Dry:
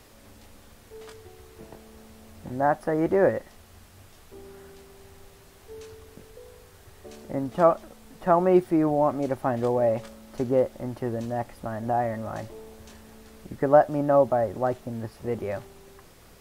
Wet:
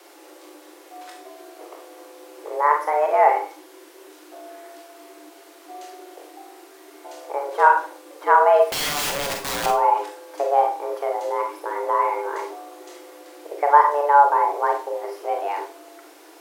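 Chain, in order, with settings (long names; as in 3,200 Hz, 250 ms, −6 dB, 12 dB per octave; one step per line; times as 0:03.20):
frequency shifter +290 Hz
0:08.68–0:09.66: wrap-around overflow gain 24.5 dB
four-comb reverb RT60 0.35 s, combs from 32 ms, DRR 2.5 dB
level +3 dB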